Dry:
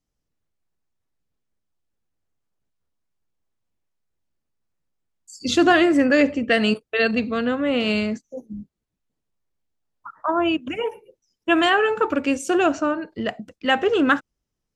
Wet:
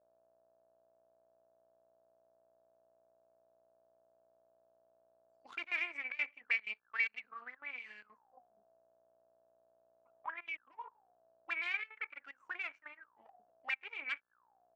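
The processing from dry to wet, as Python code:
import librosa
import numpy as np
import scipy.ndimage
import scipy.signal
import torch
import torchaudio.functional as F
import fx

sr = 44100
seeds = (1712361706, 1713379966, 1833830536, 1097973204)

y = fx.chopper(x, sr, hz=2.1, depth_pct=65, duty_pct=85)
y = fx.cheby_harmonics(y, sr, harmonics=(4, 7), levels_db=(-11, -19), full_scale_db=-5.0)
y = fx.dmg_buzz(y, sr, base_hz=60.0, harmonics=29, level_db=-51.0, tilt_db=-5, odd_only=False)
y = fx.auto_wah(y, sr, base_hz=610.0, top_hz=2300.0, q=21.0, full_db=-20.0, direction='up')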